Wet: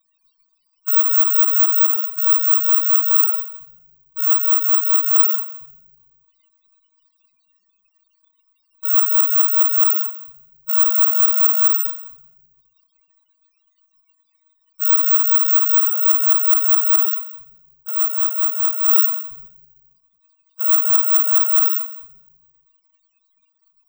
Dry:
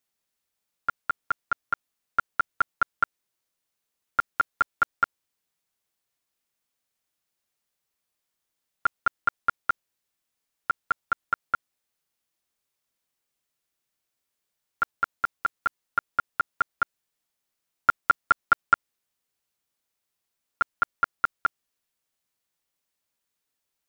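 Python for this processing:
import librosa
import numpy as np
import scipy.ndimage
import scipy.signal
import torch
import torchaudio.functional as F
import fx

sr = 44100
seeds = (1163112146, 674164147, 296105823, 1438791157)

p1 = fx.block_float(x, sr, bits=5)
p2 = fx.peak_eq(p1, sr, hz=1100.0, db=14.5, octaves=0.21)
p3 = p2 + 0.94 * np.pad(p2, (int(5.4 * sr / 1000.0), 0))[:len(p2)]
p4 = p3 + fx.echo_single(p3, sr, ms=180, db=-19.5, dry=0)
p5 = fx.room_shoebox(p4, sr, seeds[0], volume_m3=410.0, walls='mixed', distance_m=1.7)
p6 = fx.level_steps(p5, sr, step_db=15)
p7 = p5 + (p6 * 10.0 ** (-3.0 / 20.0))
p8 = fx.fold_sine(p7, sr, drive_db=6, ceiling_db=3.5)
p9 = (np.kron(scipy.signal.resample_poly(p8, 1, 2), np.eye(2)[0]) * 2)[:len(p8)]
p10 = fx.spec_topn(p9, sr, count=16)
p11 = fx.high_shelf_res(p10, sr, hz=2000.0, db=12.5, q=3.0)
p12 = fx.over_compress(p11, sr, threshold_db=-5.0, ratio=-1.0)
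p13 = fx.end_taper(p12, sr, db_per_s=150.0)
y = p13 * 10.0 ** (-10.5 / 20.0)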